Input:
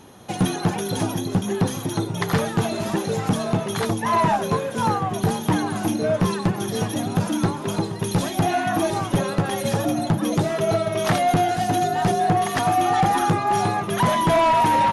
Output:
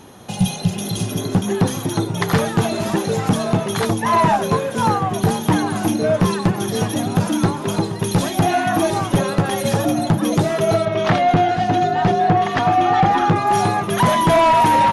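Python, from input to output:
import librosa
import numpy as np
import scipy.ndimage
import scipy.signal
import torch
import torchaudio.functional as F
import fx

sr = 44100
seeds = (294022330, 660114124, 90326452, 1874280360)

y = fx.spec_repair(x, sr, seeds[0], start_s=0.32, length_s=0.95, low_hz=230.0, high_hz=2400.0, source='both')
y = fx.lowpass(y, sr, hz=3800.0, slope=12, at=(10.85, 13.36))
y = y * librosa.db_to_amplitude(4.0)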